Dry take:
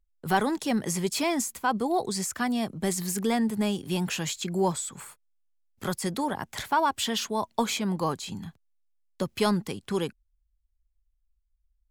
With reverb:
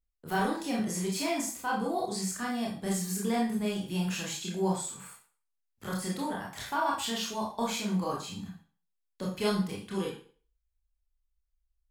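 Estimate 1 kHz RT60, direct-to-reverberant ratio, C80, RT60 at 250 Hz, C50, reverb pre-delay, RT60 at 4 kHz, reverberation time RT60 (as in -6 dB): 0.40 s, -4.0 dB, 10.0 dB, 0.40 s, 4.5 dB, 21 ms, 0.40 s, 0.40 s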